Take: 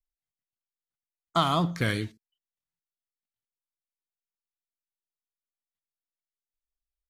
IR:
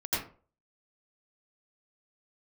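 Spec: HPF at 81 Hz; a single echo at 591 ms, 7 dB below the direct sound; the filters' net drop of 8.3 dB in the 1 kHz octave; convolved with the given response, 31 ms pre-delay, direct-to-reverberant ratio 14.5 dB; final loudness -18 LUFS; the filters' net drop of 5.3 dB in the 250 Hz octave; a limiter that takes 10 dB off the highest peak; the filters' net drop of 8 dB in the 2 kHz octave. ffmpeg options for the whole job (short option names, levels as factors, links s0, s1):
-filter_complex "[0:a]highpass=81,equalizer=f=250:t=o:g=-8.5,equalizer=f=1000:t=o:g=-8.5,equalizer=f=2000:t=o:g=-7,alimiter=level_in=1.41:limit=0.0631:level=0:latency=1,volume=0.708,aecho=1:1:591:0.447,asplit=2[s0][s1];[1:a]atrim=start_sample=2205,adelay=31[s2];[s1][s2]afir=irnorm=-1:irlink=0,volume=0.0794[s3];[s0][s3]amix=inputs=2:normalize=0,volume=11.9"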